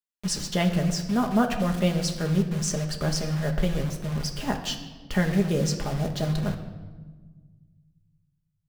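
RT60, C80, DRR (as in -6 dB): 1.4 s, 10.5 dB, 3.0 dB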